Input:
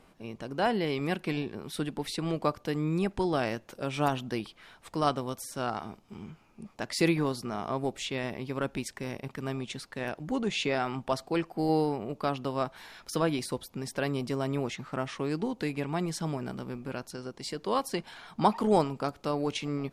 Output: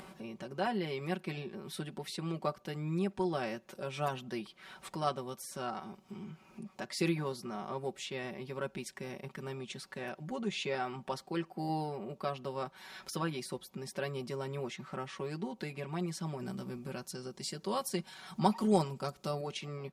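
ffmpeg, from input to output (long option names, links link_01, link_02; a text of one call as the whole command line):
ffmpeg -i in.wav -filter_complex "[0:a]asettb=1/sr,asplit=3[link_01][link_02][link_03];[link_01]atrim=end=16.394[link_04];[link_02]atrim=start=16.39:end=19.41,asetpts=PTS-STARTPTS,afade=type=in:duration=0.004:curve=qsin,afade=type=out:start_time=3.016:duration=0.004:curve=qsin,bass=frequency=250:gain=5,treble=frequency=4000:gain=8[link_05];[link_03]atrim=start=19.406[link_06];[link_04][link_05]acrossfade=duration=0.004:curve1=hsin:curve2=qsin[link_07];[link_07][link_06]acrossfade=duration=0.004:curve1=qsin:curve2=hsin,highpass=73,aecho=1:1:5.3:0.81,acompressor=mode=upward:threshold=-30dB:ratio=2.5,volume=-8.5dB" out.wav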